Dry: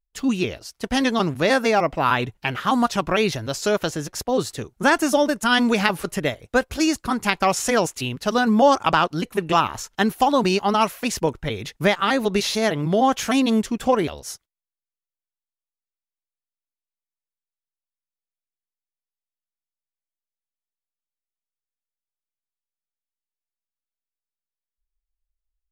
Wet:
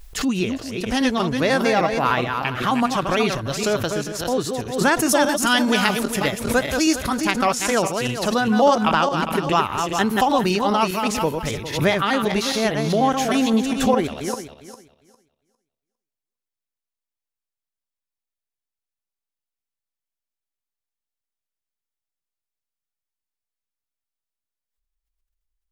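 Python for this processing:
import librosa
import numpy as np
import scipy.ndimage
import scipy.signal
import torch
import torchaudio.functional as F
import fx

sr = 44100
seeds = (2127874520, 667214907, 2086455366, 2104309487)

y = fx.reverse_delay_fb(x, sr, ms=202, feedback_pct=42, wet_db=-5.5)
y = fx.high_shelf(y, sr, hz=4500.0, db=6.0, at=(5.09, 7.18))
y = fx.pre_swell(y, sr, db_per_s=84.0)
y = y * librosa.db_to_amplitude(-1.0)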